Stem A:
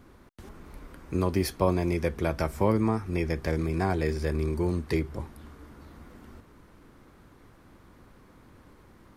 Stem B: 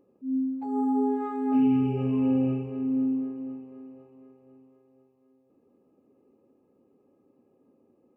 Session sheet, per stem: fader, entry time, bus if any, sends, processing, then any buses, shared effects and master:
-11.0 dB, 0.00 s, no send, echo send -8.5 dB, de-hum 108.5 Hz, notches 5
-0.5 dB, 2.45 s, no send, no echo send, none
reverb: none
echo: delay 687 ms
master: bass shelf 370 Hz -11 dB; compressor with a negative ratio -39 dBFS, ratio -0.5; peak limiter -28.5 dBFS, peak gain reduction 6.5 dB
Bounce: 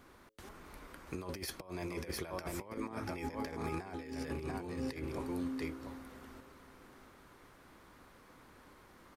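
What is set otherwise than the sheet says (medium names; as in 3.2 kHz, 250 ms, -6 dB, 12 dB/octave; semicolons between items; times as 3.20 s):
stem A -11.0 dB -> -3.5 dB; stem B -0.5 dB -> -10.0 dB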